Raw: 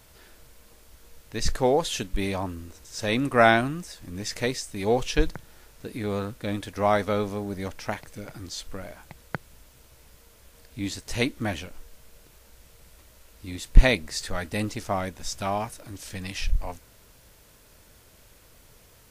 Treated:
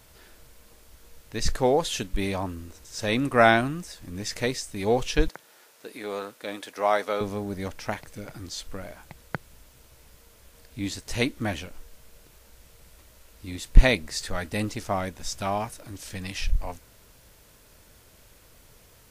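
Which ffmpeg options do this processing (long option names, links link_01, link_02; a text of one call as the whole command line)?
ffmpeg -i in.wav -filter_complex "[0:a]asettb=1/sr,asplit=3[link_01][link_02][link_03];[link_01]atrim=end=5.284[link_04];[link_02]atrim=start=5.28:end=7.21,asetpts=PTS-STARTPTS,afade=type=in:duration=0.004:curve=qsin,afade=type=out:start_time=1.926:duration=0.004:curve=qsin,highpass=410[link_05];[link_03]atrim=start=7.206[link_06];[link_04][link_05]acrossfade=duration=0.004:curve1=hsin:curve2=qsin[link_07];[link_07][link_06]acrossfade=duration=0.004:curve1=qsin:curve2=hsin" out.wav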